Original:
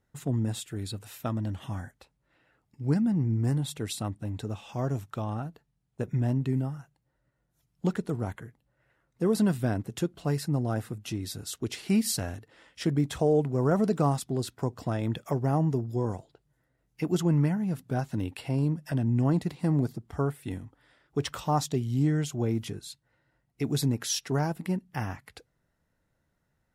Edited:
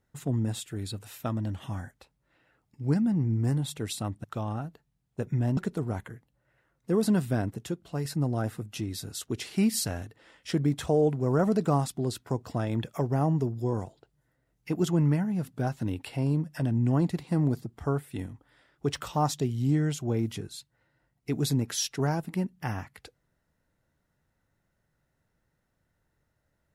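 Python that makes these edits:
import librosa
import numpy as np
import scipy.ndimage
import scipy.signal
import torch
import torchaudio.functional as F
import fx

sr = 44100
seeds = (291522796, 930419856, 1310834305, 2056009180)

y = fx.edit(x, sr, fx.cut(start_s=4.24, length_s=0.81),
    fx.cut(start_s=6.38, length_s=1.51),
    fx.clip_gain(start_s=9.95, length_s=0.42, db=-4.0), tone=tone)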